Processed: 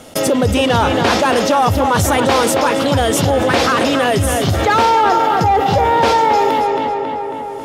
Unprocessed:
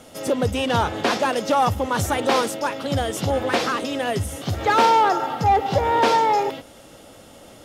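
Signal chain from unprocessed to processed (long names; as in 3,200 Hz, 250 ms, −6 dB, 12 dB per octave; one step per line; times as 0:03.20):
noise gate −38 dBFS, range −35 dB
feedback echo with a low-pass in the loop 273 ms, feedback 29%, low-pass 3,300 Hz, level −8 dB
envelope flattener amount 70%
level +2.5 dB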